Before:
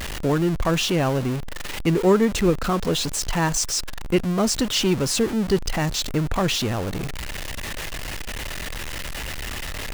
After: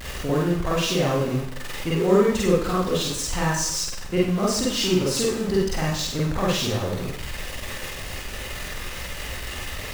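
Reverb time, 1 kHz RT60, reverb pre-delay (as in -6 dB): 0.65 s, 0.65 s, 39 ms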